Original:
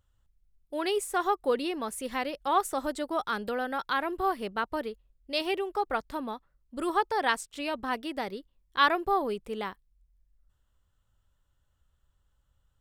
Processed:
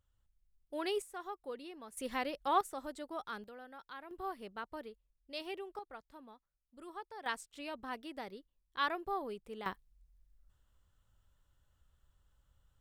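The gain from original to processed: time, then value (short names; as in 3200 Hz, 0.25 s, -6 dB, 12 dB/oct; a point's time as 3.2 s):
-7 dB
from 1.02 s -17 dB
from 1.97 s -5 dB
from 2.61 s -12 dB
from 3.44 s -20 dB
from 4.11 s -13 dB
from 5.79 s -20 dB
from 7.26 s -11 dB
from 9.66 s 0 dB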